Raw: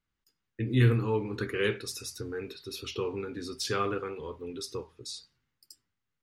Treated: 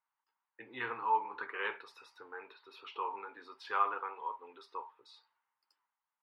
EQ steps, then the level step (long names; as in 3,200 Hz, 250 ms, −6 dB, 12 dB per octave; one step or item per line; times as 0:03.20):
high-pass with resonance 920 Hz, resonance Q 6.1
high-frequency loss of the air 440 metres
−2.5 dB